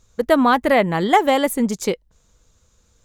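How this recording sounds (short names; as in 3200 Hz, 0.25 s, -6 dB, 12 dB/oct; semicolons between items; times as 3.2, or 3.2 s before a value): noise floor -61 dBFS; spectral tilt -3.5 dB/oct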